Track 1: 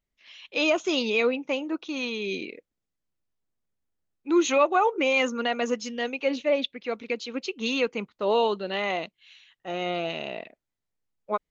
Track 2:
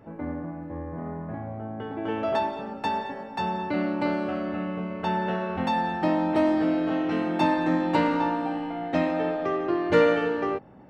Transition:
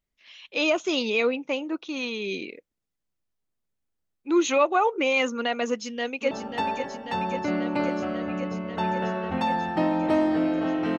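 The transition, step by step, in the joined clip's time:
track 1
5.67–6.31 s: echo throw 540 ms, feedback 80%, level -7.5 dB
6.31 s: go over to track 2 from 2.57 s

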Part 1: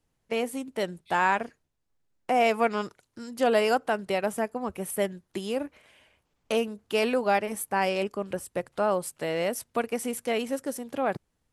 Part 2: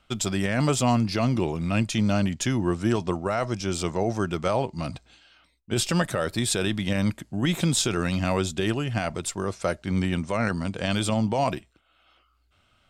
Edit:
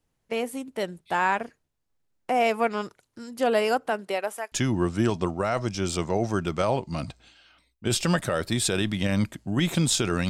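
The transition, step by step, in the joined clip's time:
part 1
3.90–4.52 s: high-pass 140 Hz -> 1.1 kHz
4.52 s: go over to part 2 from 2.38 s

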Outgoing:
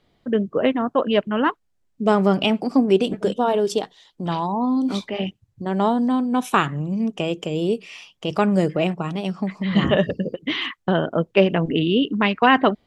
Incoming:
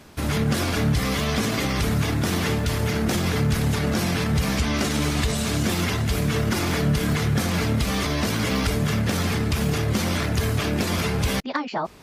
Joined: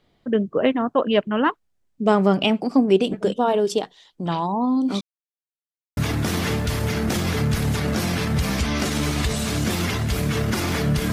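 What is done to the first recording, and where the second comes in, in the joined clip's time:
outgoing
5.01–5.97 s: mute
5.97 s: go over to incoming from 1.96 s

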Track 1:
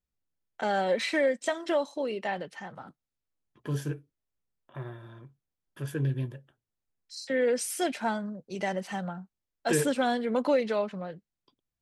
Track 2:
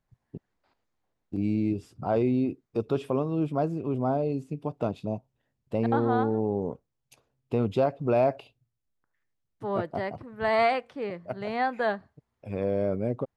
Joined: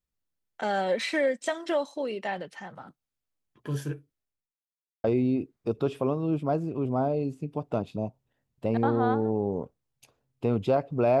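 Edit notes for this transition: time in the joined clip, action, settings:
track 1
4.15–4.59 s: studio fade out
4.59–5.04 s: mute
5.04 s: go over to track 2 from 2.13 s

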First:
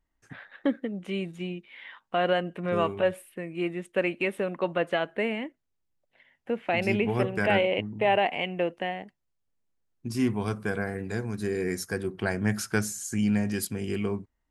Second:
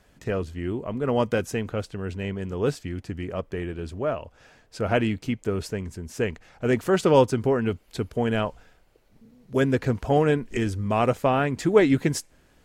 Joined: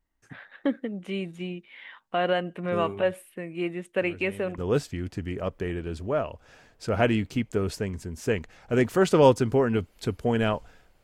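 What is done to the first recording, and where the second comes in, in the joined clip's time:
first
4.01 s: add second from 1.93 s 0.57 s -12.5 dB
4.58 s: go over to second from 2.50 s

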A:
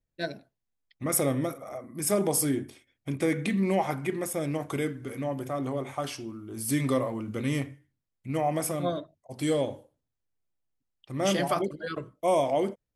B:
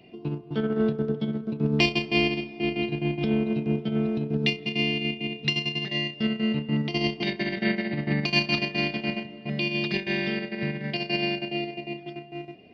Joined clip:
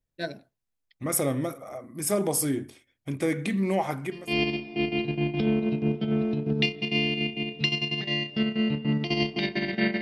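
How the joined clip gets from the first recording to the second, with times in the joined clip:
A
4.23 s: go over to B from 2.07 s, crossfade 0.40 s quadratic

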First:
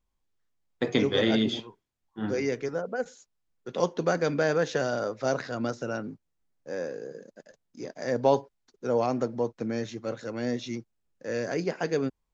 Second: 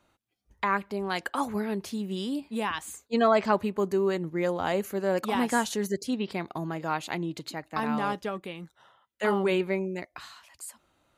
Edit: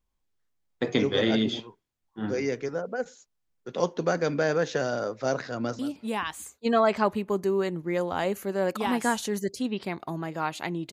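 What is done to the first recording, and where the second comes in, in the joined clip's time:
first
5.51–5.79 s: echo throw 170 ms, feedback 10%, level -13 dB
5.79 s: go over to second from 2.27 s

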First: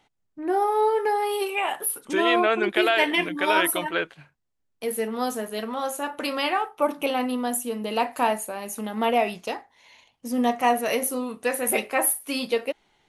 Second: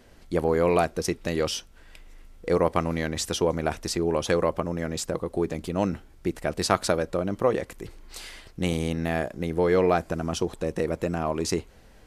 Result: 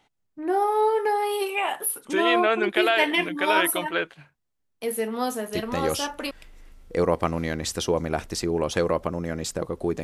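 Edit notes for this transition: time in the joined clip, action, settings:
first
5.92 s: go over to second from 1.45 s, crossfade 0.78 s logarithmic

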